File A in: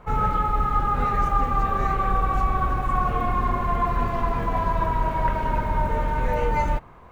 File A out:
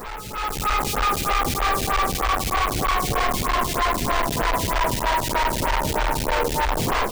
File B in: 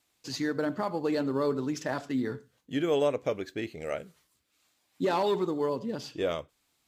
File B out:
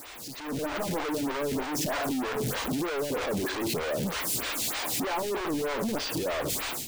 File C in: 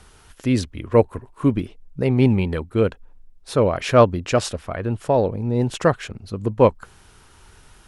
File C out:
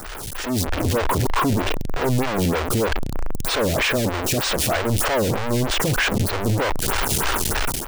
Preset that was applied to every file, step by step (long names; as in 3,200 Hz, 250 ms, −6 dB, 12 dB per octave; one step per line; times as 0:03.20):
sign of each sample alone
automatic gain control gain up to 13 dB
phaser with staggered stages 3.2 Hz
level −9 dB